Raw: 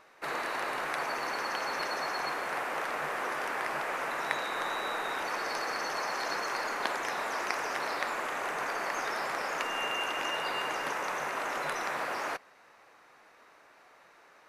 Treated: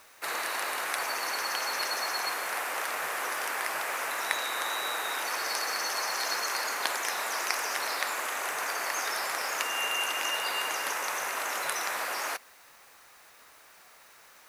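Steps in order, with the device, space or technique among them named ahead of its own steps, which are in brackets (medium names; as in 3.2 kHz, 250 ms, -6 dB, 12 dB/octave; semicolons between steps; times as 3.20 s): turntable without a phono preamp (RIAA curve recording; white noise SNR 28 dB)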